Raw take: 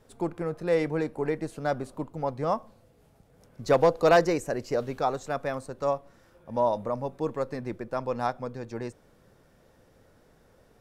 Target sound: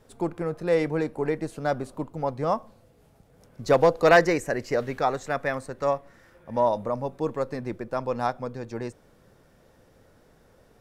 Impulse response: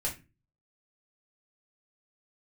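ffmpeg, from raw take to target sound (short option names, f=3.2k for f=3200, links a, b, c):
-filter_complex "[0:a]asettb=1/sr,asplit=3[a][b][c];[a]atrim=end=4.024[d];[b]atrim=start=4.02:end=6.69,asetpts=PTS-STARTPTS,afade=t=in:d=0.004:c=qsin,afade=t=out:st=2.666:d=0.004:c=qsin,equalizer=f=1.9k:t=o:w=0.57:g=8.5[e];[c]atrim=start=6.686[f];[d][e]acrossfade=d=0.004:c1=hsin:c2=qsin[g];[g][f]acrossfade=d=0.004:c1=qsin:c2=hsin,volume=2dB"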